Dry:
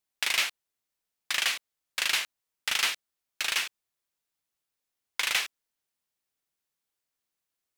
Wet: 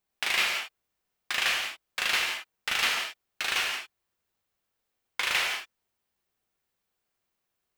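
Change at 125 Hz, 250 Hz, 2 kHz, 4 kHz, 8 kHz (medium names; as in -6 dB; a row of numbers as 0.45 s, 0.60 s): no reading, +5.5 dB, +2.5 dB, +0.5 dB, -2.5 dB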